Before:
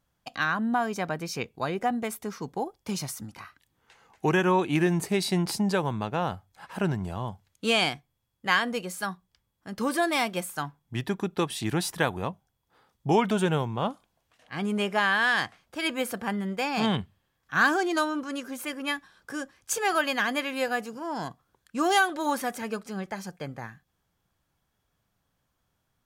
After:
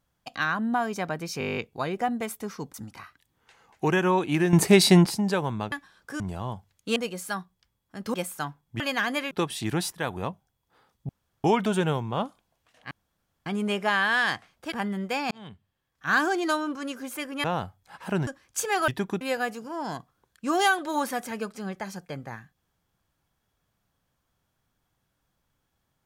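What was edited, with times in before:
1.39 s: stutter 0.02 s, 10 plays
2.56–3.15 s: delete
4.94–5.47 s: gain +9.5 dB
6.13–6.96 s: swap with 18.92–19.40 s
7.72–8.68 s: delete
9.86–10.32 s: delete
10.98–11.31 s: swap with 20.01–20.52 s
11.93–12.23 s: fade in equal-power, from -17.5 dB
13.09 s: insert room tone 0.35 s
14.56 s: insert room tone 0.55 s
15.82–16.20 s: delete
16.79–17.75 s: fade in

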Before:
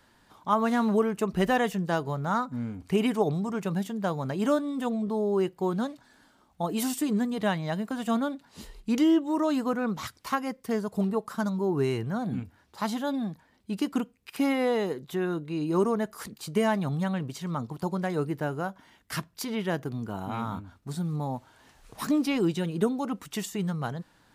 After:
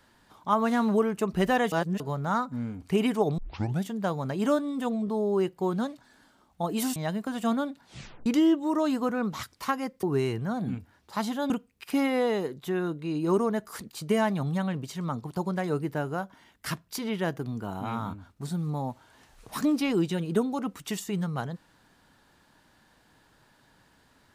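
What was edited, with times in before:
1.72–2.00 s: reverse
3.38 s: tape start 0.44 s
6.96–7.60 s: delete
8.48 s: tape stop 0.42 s
10.67–11.68 s: delete
13.15–13.96 s: delete

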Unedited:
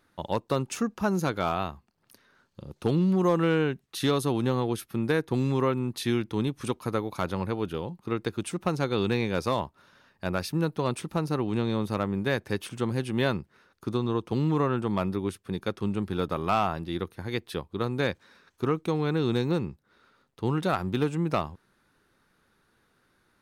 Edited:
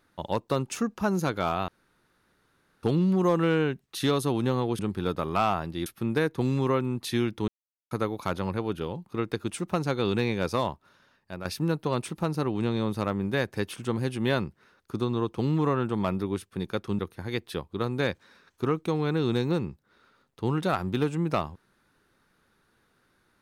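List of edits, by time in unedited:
1.68–2.83 s: room tone
6.41–6.84 s: mute
9.59–10.38 s: fade out, to -10 dB
15.92–16.99 s: move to 4.79 s

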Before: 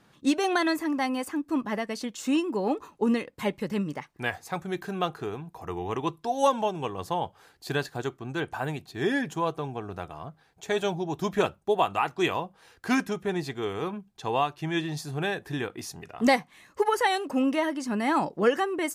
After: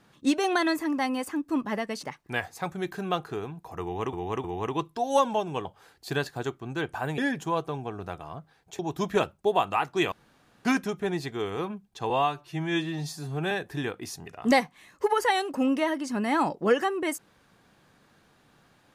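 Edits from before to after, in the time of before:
2.03–3.93 s: delete
5.72–6.03 s: loop, 3 plays
6.93–7.24 s: delete
8.77–9.08 s: delete
10.69–11.02 s: delete
12.35–12.88 s: room tone
14.33–15.27 s: stretch 1.5×

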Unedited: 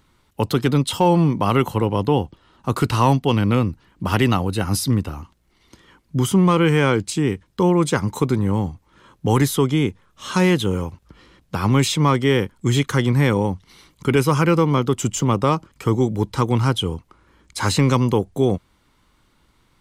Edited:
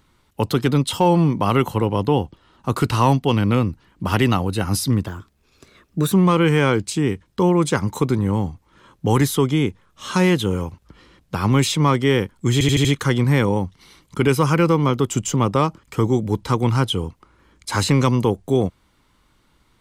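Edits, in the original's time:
5.06–6.33 s: speed 119%
12.73 s: stutter 0.08 s, 5 plays

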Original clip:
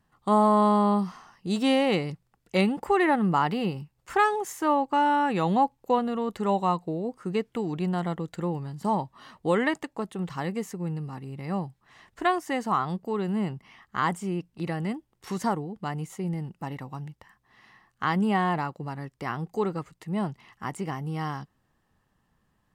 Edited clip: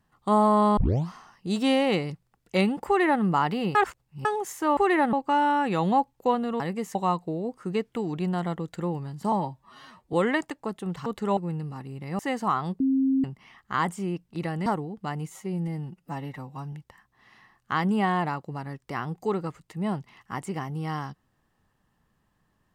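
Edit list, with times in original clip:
0.77 s: tape start 0.31 s
2.87–3.23 s: copy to 4.77 s
3.75–4.25 s: reverse
6.24–6.55 s: swap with 10.39–10.74 s
8.92–9.46 s: stretch 1.5×
11.56–12.43 s: delete
13.04–13.48 s: bleep 267 Hz -19.5 dBFS
14.90–15.45 s: delete
16.09–17.04 s: stretch 1.5×

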